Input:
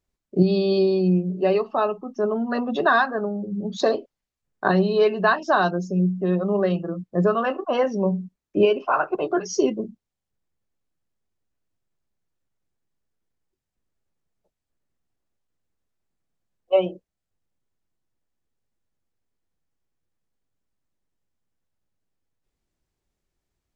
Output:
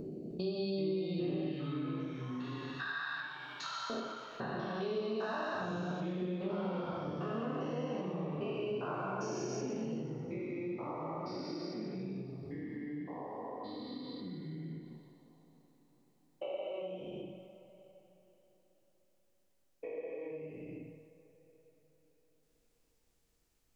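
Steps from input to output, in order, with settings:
spectrum averaged block by block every 400 ms
0:01.47–0:03.90: high-pass filter 1,400 Hz 24 dB per octave
delay with a high-pass on its return 123 ms, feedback 49%, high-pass 4,200 Hz, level −7 dB
convolution reverb, pre-delay 3 ms, DRR −0.5 dB
delay with pitch and tempo change per echo 309 ms, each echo −3 semitones, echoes 2, each echo −6 dB
high-shelf EQ 4,300 Hz +10 dB
downward compressor 2.5 to 1, threshold −43 dBFS, peak gain reduction 20.5 dB

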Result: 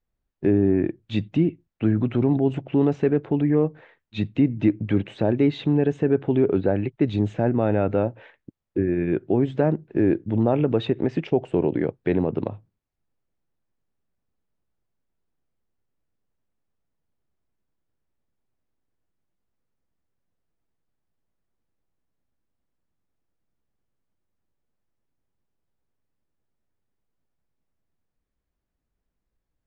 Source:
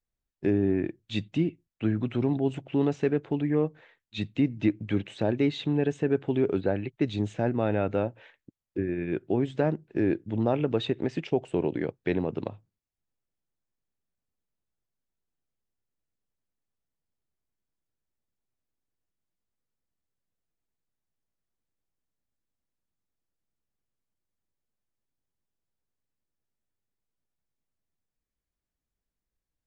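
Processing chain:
low-pass filter 1,400 Hz 6 dB per octave
in parallel at −1 dB: brickwall limiter −24.5 dBFS, peak gain reduction 11.5 dB
on the sum: level +3 dB

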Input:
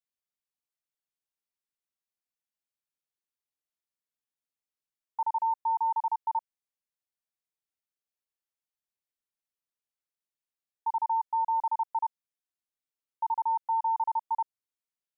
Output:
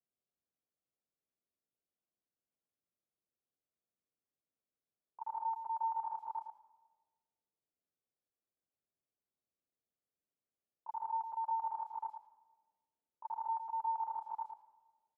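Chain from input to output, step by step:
low-pass that shuts in the quiet parts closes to 670 Hz, open at −25.5 dBFS
brickwall limiter −32 dBFS, peak gain reduction 9 dB
notch comb filter 920 Hz
output level in coarse steps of 17 dB
slap from a distant wall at 19 metres, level −8 dB
on a send at −18.5 dB: convolution reverb RT60 1.5 s, pre-delay 137 ms
on the sum: level +15.5 dB

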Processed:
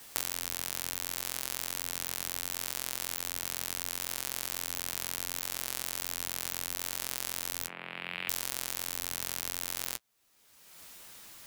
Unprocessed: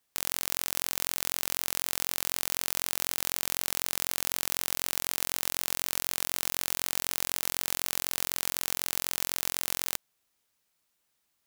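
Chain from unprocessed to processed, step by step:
0:07.66–0:08.28: elliptic band-pass filter 150–2,500 Hz, stop band 40 dB
flanger 0.7 Hz, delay 8.4 ms, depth 4.8 ms, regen −41%
multiband upward and downward compressor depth 100%

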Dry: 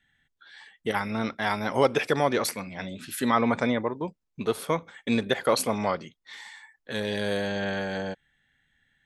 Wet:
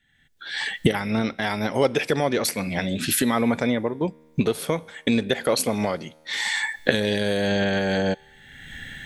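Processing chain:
camcorder AGC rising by 33 dB per second
parametric band 1,100 Hz −7 dB 0.94 octaves
tuned comb filter 78 Hz, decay 1.5 s, harmonics all, mix 30%
level +5.5 dB

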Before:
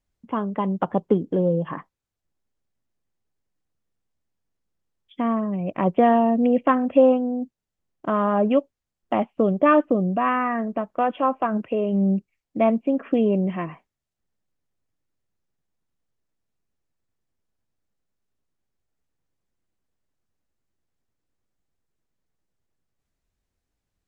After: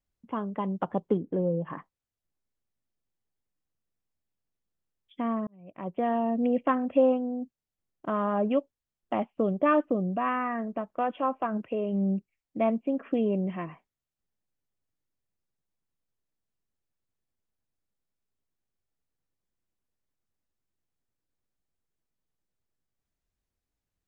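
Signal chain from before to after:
0:01.17–0:01.70: low-pass filter 2,500 Hz 24 dB per octave
0:05.47–0:06.45: fade in
level −6.5 dB

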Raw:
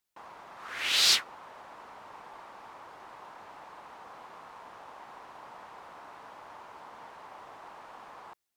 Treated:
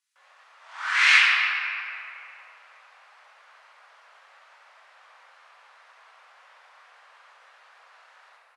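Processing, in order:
inverse Chebyshev high-pass filter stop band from 500 Hz, stop band 70 dB
pitch shifter −11 semitones
rectangular room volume 120 cubic metres, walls hard, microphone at 1.1 metres

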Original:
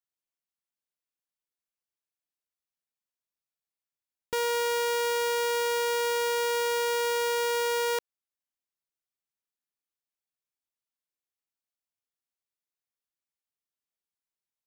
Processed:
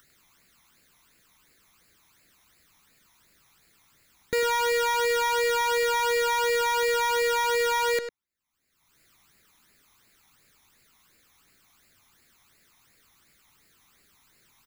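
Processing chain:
high-shelf EQ 3,900 Hz −6 dB
upward compression, threshold −46 dBFS
all-pass phaser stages 12, 2.8 Hz, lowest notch 480–1,100 Hz
far-end echo of a speakerphone 100 ms, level −6 dB
level +8.5 dB

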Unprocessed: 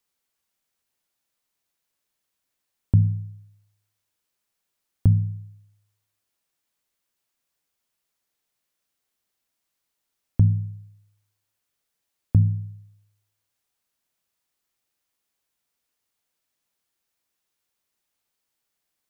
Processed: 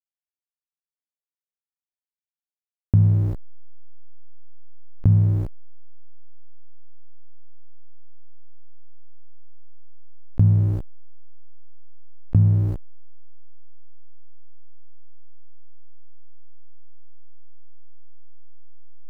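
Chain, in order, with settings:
slack as between gear wheels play −32.5 dBFS
envelope flattener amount 70%

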